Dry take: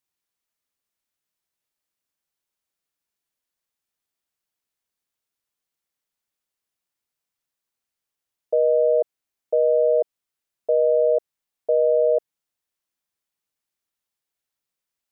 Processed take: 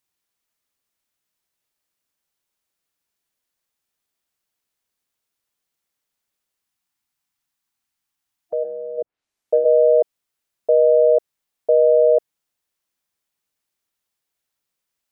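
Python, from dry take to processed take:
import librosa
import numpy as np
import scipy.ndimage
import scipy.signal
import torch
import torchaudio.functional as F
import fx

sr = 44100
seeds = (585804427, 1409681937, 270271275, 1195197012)

y = fx.env_lowpass_down(x, sr, base_hz=340.0, full_db=-14.5, at=(8.63, 9.64), fade=0.02)
y = fx.spec_box(y, sr, start_s=6.63, length_s=2.35, low_hz=340.0, high_hz=710.0, gain_db=-8)
y = y * librosa.db_to_amplitude(4.5)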